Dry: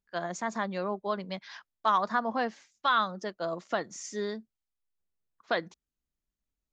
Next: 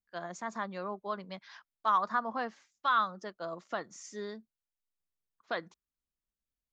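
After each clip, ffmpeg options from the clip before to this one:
-af "adynamicequalizer=threshold=0.0112:dfrequency=1200:dqfactor=1.9:tfrequency=1200:tqfactor=1.9:attack=5:release=100:ratio=0.375:range=3.5:mode=boostabove:tftype=bell,volume=-7dB"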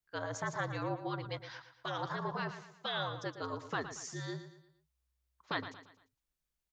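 -af "afftfilt=real='re*lt(hypot(re,im),0.1)':imag='im*lt(hypot(re,im),0.1)':win_size=1024:overlap=0.75,aecho=1:1:115|230|345|460:0.282|0.113|0.0451|0.018,afreqshift=-63,volume=3dB"

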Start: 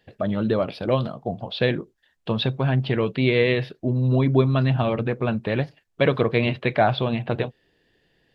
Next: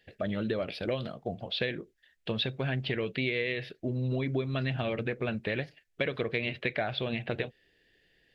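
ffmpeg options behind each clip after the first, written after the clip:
-af "equalizer=f=125:t=o:w=1:g=-6,equalizer=f=250:t=o:w=1:g=-4,equalizer=f=1k:t=o:w=1:g=-11,equalizer=f=2k:t=o:w=1:g=6,acompressor=threshold=-25dB:ratio=6,volume=-2dB"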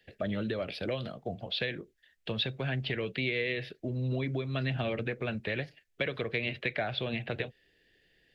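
-filter_complex "[0:a]equalizer=f=1k:w=1.5:g=-2,acrossover=split=150|520|1100[a][b][c][d];[b]alimiter=level_in=5.5dB:limit=-24dB:level=0:latency=1:release=358,volume=-5.5dB[e];[a][e][c][d]amix=inputs=4:normalize=0"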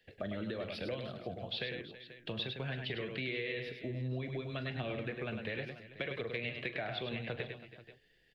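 -af "aecho=1:1:42|102|326|485:0.178|0.473|0.126|0.126,flanger=delay=1.9:depth=1.3:regen=86:speed=1.1:shape=triangular,acompressor=threshold=-38dB:ratio=2,volume=1dB"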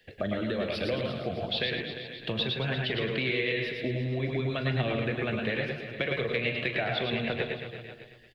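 -af "aecho=1:1:115|350|615:0.531|0.237|0.133,volume=8dB"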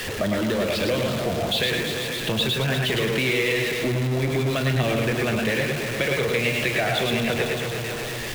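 -af "aeval=exprs='val(0)+0.5*0.0376*sgn(val(0))':c=same,volume=3.5dB"

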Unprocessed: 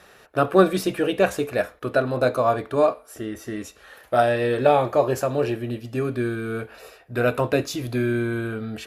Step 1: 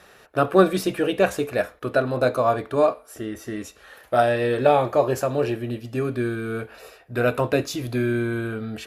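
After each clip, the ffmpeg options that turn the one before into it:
-af anull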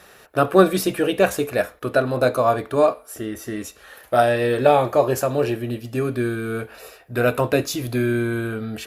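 -af "highshelf=f=9.9k:g=10,volume=2dB"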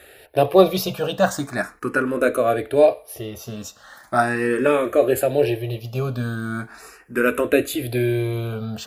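-filter_complex "[0:a]asplit=2[a][b];[b]afreqshift=0.39[c];[a][c]amix=inputs=2:normalize=1,volume=3.5dB"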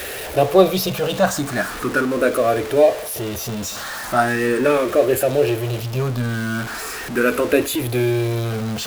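-af "aeval=exprs='val(0)+0.5*0.0596*sgn(val(0))':c=same"

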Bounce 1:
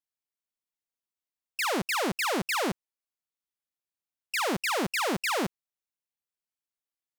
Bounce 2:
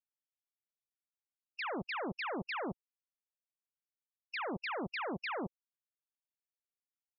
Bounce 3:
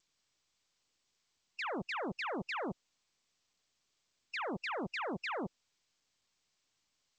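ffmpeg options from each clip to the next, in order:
-af "afftfilt=real='re*gte(hypot(re,im),0.0501)':imag='im*gte(hypot(re,im),0.0501)':win_size=1024:overlap=0.75,volume=-9dB"
-ar 16000 -c:a g722

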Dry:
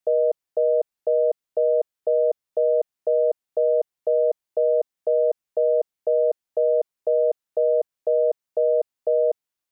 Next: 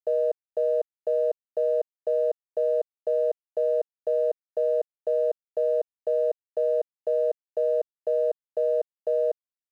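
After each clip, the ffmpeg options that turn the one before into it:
-af "aeval=exprs='sgn(val(0))*max(abs(val(0))-0.00251,0)':c=same,volume=-4dB"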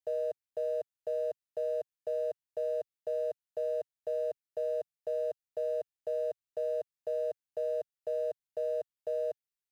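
-af "equalizer=f=125:t=o:w=1:g=5,equalizer=f=250:t=o:w=1:g=-9,equalizer=f=500:t=o:w=1:g=-7,equalizer=f=1k:t=o:w=1:g=-6"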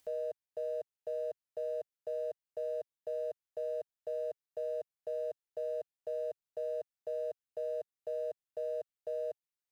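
-af "acompressor=mode=upward:threshold=-50dB:ratio=2.5,volume=-4dB"

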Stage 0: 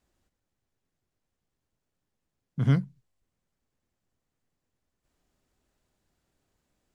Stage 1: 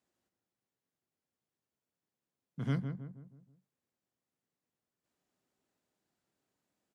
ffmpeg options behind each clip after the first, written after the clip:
-filter_complex "[0:a]highpass=160,asplit=2[a][b];[b]adelay=160,lowpass=f=1.3k:p=1,volume=-7dB,asplit=2[c][d];[d]adelay=160,lowpass=f=1.3k:p=1,volume=0.45,asplit=2[e][f];[f]adelay=160,lowpass=f=1.3k:p=1,volume=0.45,asplit=2[g][h];[h]adelay=160,lowpass=f=1.3k:p=1,volume=0.45,asplit=2[i][j];[j]adelay=160,lowpass=f=1.3k:p=1,volume=0.45[k];[c][e][g][i][k]amix=inputs=5:normalize=0[l];[a][l]amix=inputs=2:normalize=0,volume=-7dB"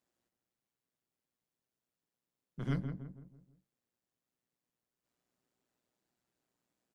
-af "tremolo=f=120:d=0.621,bandreject=f=110.5:t=h:w=4,bandreject=f=221:t=h:w=4,bandreject=f=331.5:t=h:w=4,bandreject=f=442:t=h:w=4,bandreject=f=552.5:t=h:w=4,bandreject=f=663:t=h:w=4,bandreject=f=773.5:t=h:w=4,bandreject=f=884:t=h:w=4,volume=1.5dB"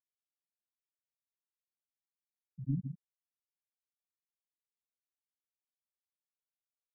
-af "afftfilt=real='re*gte(hypot(re,im),0.1)':imag='im*gte(hypot(re,im),0.1)':win_size=1024:overlap=0.75,volume=1dB"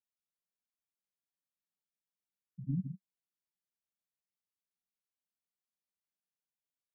-af "equalizer=f=190:t=o:w=0.55:g=11,volume=-5dB"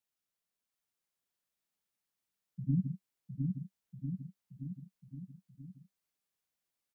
-af "aecho=1:1:710|1349|1924|2442|2908:0.631|0.398|0.251|0.158|0.1,volume=4dB"

